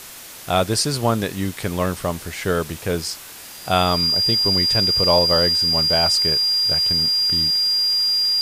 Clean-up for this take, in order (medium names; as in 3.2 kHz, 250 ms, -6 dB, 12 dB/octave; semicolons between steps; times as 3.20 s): band-stop 4.8 kHz, Q 30; noise print and reduce 28 dB